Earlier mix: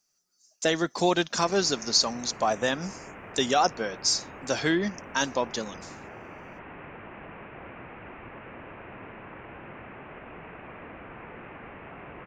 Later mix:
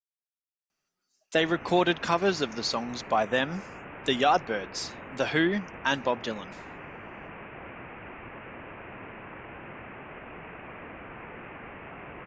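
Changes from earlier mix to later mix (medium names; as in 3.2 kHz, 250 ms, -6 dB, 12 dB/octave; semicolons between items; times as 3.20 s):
speech: entry +0.70 s; master: add resonant high shelf 4.1 kHz -10.5 dB, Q 1.5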